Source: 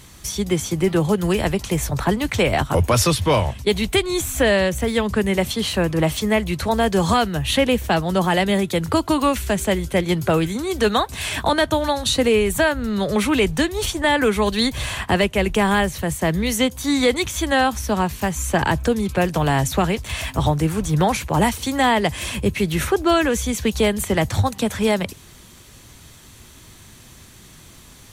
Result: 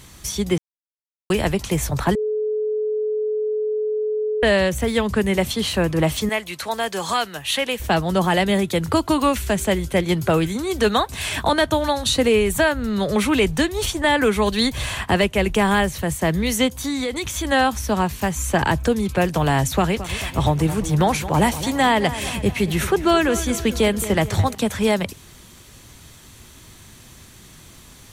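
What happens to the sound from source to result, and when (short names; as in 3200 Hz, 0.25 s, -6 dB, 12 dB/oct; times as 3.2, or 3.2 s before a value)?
0.58–1.3 mute
2.15–4.43 bleep 428 Hz -19.5 dBFS
6.29–7.8 HPF 970 Hz 6 dB/oct
16.78–17.45 compressor, threshold -21 dBFS
19.74–24.55 darkening echo 0.219 s, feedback 54%, low-pass 3700 Hz, level -13.5 dB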